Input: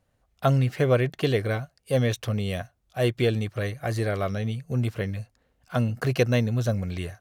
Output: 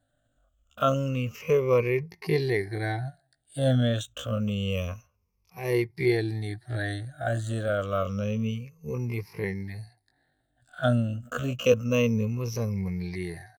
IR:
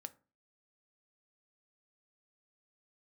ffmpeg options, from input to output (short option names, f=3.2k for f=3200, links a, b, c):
-af "afftfilt=real='re*pow(10,19/40*sin(2*PI*(0.82*log(max(b,1)*sr/1024/100)/log(2)-(-0.53)*(pts-256)/sr)))':imag='im*pow(10,19/40*sin(2*PI*(0.82*log(max(b,1)*sr/1024/100)/log(2)-(-0.53)*(pts-256)/sr)))':win_size=1024:overlap=0.75,atempo=0.53,volume=-5.5dB"